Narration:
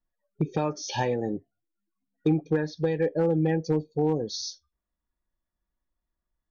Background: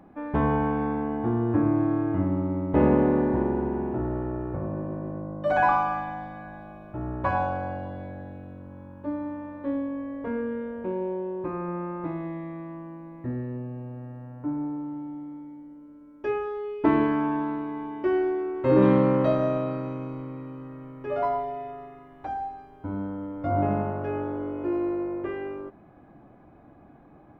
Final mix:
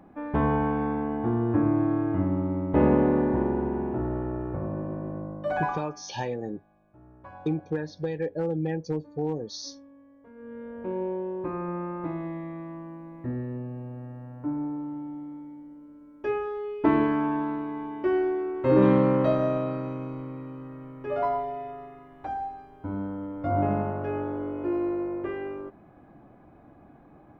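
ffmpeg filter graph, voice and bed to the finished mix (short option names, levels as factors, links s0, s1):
-filter_complex "[0:a]adelay=5200,volume=0.596[s0];[1:a]volume=9.44,afade=t=out:st=5.23:d=0.67:silence=0.1,afade=t=in:st=10.35:d=0.65:silence=0.1[s1];[s0][s1]amix=inputs=2:normalize=0"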